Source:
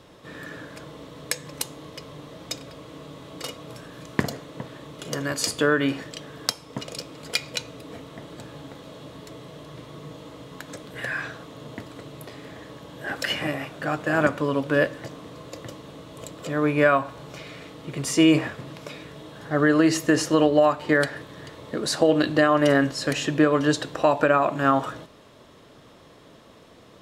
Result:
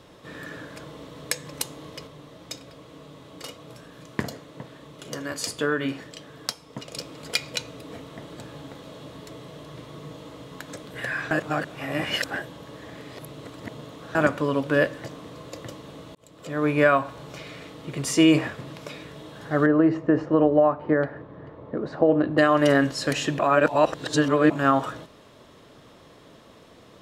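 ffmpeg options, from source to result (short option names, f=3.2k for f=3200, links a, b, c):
-filter_complex "[0:a]asettb=1/sr,asplit=3[a][b][c];[a]atrim=end=2.074[d];[b]atrim=start=2.07:end=6.94,asetpts=PTS-STARTPTS,afade=t=in:d=0.004:c=qsin,afade=t=out:st=4.866:d=0.004:c=qsin,flanger=delay=4.2:depth=6.7:regen=-70:speed=1.1:shape=sinusoidal[e];[c]atrim=start=6.936[f];[d][e]acrossfade=d=0.004:c1=hsin:c2=qsin[g];[g][f]acrossfade=d=0.004:c1=qsin:c2=hsin,asettb=1/sr,asplit=3[h][i][j];[h]atrim=end=19.664[k];[i]atrim=start=19.66:end=22.38,asetpts=PTS-STARTPTS,afade=t=in:d=0.004:c=qsin,afade=t=out:st=2.716:d=0.004:c=qsin,lowpass=1.1k[l];[j]atrim=start=22.376[m];[k][l]acrossfade=d=0.004:c1=hsin:c2=qsin[n];[n][m]acrossfade=d=0.004:c1=qsin:c2=hsin,asplit=6[o][p][q][r][s][t];[o]atrim=end=11.312[u];[p]atrim=start=11.308:end=14.152,asetpts=PTS-STARTPTS,areverse[v];[q]atrim=start=14.148:end=16.15,asetpts=PTS-STARTPTS,afade=t=out:st=1.998:d=0.004:c=hsin[w];[r]atrim=start=16.15:end=23.392,asetpts=PTS-STARTPTS,afade=t=in:d=0.56[x];[s]atrim=start=23.388:end=24.502,asetpts=PTS-STARTPTS,areverse[y];[t]atrim=start=24.498[z];[u][v]acrossfade=d=0.004:c1=hsin:c2=hsin[aa];[w][x]concat=n=2:v=0:a=1[ab];[aa][ab]acrossfade=d=0.004:c1=hsin:c2=hsin[ac];[ac][y]acrossfade=d=0.004:c1=hsin:c2=hsin[ad];[ad][z]acrossfade=d=0.004:c1=hsin:c2=hsin"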